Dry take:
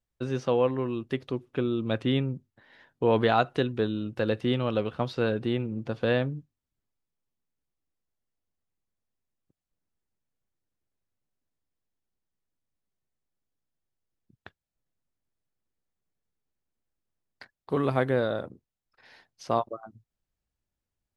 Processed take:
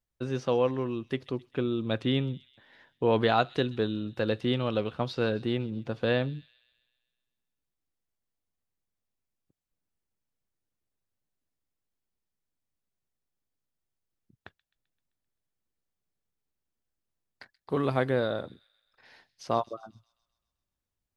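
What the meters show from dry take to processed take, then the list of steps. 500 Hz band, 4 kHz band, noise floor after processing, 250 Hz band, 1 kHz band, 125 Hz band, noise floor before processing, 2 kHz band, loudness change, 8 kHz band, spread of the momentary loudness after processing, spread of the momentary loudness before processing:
-1.5 dB, +1.0 dB, under -85 dBFS, -1.5 dB, -1.5 dB, -1.5 dB, under -85 dBFS, -1.0 dB, -1.5 dB, no reading, 9 LU, 9 LU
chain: dynamic bell 4.5 kHz, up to +4 dB, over -47 dBFS, Q 1.2; on a send: feedback echo behind a high-pass 130 ms, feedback 58%, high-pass 3.6 kHz, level -15 dB; on the sum: trim -1.5 dB

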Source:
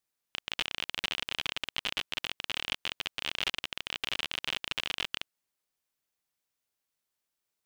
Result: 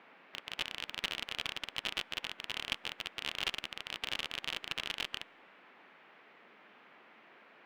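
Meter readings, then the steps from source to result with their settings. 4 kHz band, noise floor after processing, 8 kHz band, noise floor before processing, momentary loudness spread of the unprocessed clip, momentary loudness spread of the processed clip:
-4.5 dB, -61 dBFS, -4.5 dB, under -85 dBFS, 3 LU, 5 LU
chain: band noise 190–2500 Hz -49 dBFS; feedback comb 110 Hz, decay 1.5 s, harmonics all, mix 30%; upward expansion 1.5:1, over -50 dBFS; trim +1 dB

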